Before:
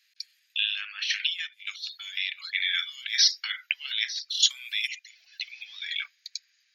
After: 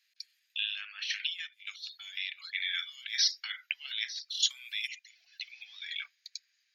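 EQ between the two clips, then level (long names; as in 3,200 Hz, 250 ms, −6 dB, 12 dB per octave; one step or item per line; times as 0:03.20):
parametric band 730 Hz +6.5 dB 0.31 octaves
−6.5 dB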